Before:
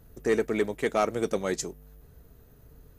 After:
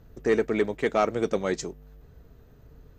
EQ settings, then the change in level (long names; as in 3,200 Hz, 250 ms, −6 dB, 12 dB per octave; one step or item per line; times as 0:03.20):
moving average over 4 samples
+2.0 dB